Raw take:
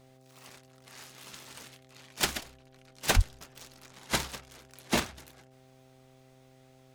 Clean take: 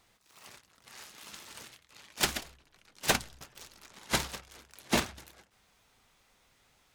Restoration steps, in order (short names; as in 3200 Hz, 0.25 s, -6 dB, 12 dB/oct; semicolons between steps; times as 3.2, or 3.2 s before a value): de-hum 130.4 Hz, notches 6; 3.15–3.27 HPF 140 Hz 24 dB/oct